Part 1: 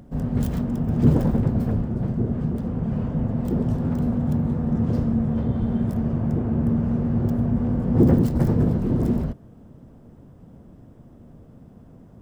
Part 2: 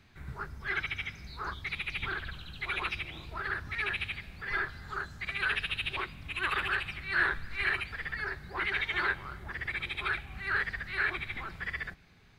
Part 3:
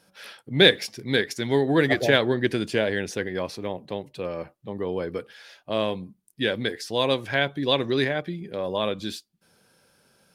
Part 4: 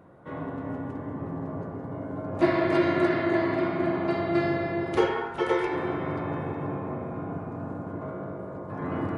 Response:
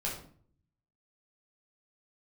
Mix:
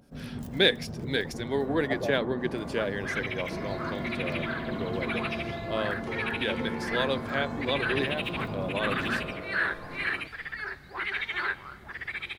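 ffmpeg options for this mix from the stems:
-filter_complex "[0:a]alimiter=limit=-12.5dB:level=0:latency=1:release=477,flanger=delay=0.3:depth=3.8:regen=-61:speed=0.22:shape=triangular,volume=-6dB[link_01];[1:a]adelay=2400,volume=0dB[link_02];[2:a]adynamicequalizer=threshold=0.0126:dfrequency=1700:dqfactor=0.7:tfrequency=1700:tqfactor=0.7:attack=5:release=100:ratio=0.375:range=3:mode=cutabove:tftype=highshelf,volume=-5dB[link_03];[3:a]dynaudnorm=framelen=100:gausssize=11:maxgain=13.5dB,alimiter=limit=-13dB:level=0:latency=1,adelay=1100,volume=-17.5dB,asplit=2[link_04][link_05];[link_05]volume=-7.5dB[link_06];[4:a]atrim=start_sample=2205[link_07];[link_06][link_07]afir=irnorm=-1:irlink=0[link_08];[link_01][link_02][link_03][link_04][link_08]amix=inputs=5:normalize=0,lowshelf=frequency=170:gain=-9.5"

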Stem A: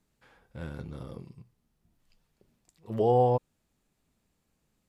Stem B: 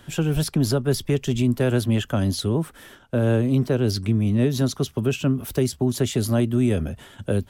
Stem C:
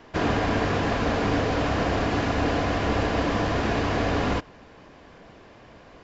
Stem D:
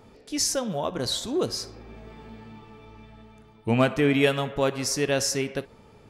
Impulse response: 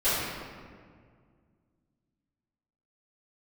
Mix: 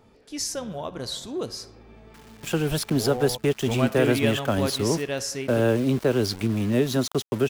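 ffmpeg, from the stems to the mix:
-filter_complex "[0:a]volume=-9.5dB,asplit=2[link_01][link_02];[1:a]bass=frequency=250:gain=-9,treble=frequency=4000:gain=-3,aeval=exprs='val(0)*gte(abs(val(0)),0.015)':channel_layout=same,adelay=2350,volume=2.5dB[link_03];[2:a]highpass=frequency=1100:width=0.5412,highpass=frequency=1100:width=1.3066,acompressor=threshold=-42dB:ratio=3,acrusher=bits=5:mix=0:aa=0.000001,adelay=2000,volume=-13.5dB[link_04];[3:a]volume=-4.5dB[link_05];[link_02]apad=whole_len=354433[link_06];[link_04][link_06]sidechaincompress=threshold=-39dB:ratio=8:attack=16:release=240[link_07];[link_01][link_03][link_07][link_05]amix=inputs=4:normalize=0"

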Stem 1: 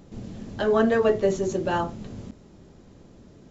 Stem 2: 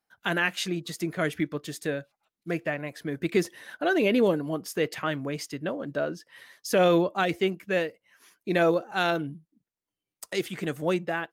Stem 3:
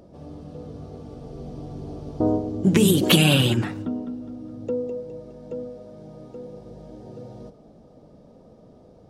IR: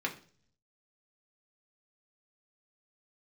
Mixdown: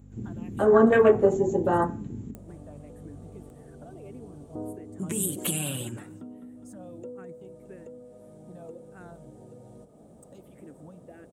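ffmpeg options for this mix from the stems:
-filter_complex "[0:a]afwtdn=0.0447,aeval=exprs='val(0)+0.00447*(sin(2*PI*50*n/s)+sin(2*PI*2*50*n/s)/2+sin(2*PI*3*50*n/s)/3+sin(2*PI*4*50*n/s)/4+sin(2*PI*5*50*n/s)/5)':channel_layout=same,volume=0dB,asplit=2[link_01][link_02];[link_02]volume=-7.5dB[link_03];[1:a]tiltshelf=frequency=970:gain=9.5,acompressor=threshold=-24dB:ratio=6,asplit=2[link_04][link_05];[link_05]afreqshift=-1.7[link_06];[link_04][link_06]amix=inputs=2:normalize=1,volume=-17dB[link_07];[2:a]acompressor=mode=upward:threshold=-24dB:ratio=2.5,adelay=2350,volume=-15dB[link_08];[3:a]atrim=start_sample=2205[link_09];[link_03][link_09]afir=irnorm=-1:irlink=0[link_10];[link_01][link_07][link_08][link_10]amix=inputs=4:normalize=0,highpass=54,highshelf=frequency=6500:width_type=q:width=3:gain=9.5"

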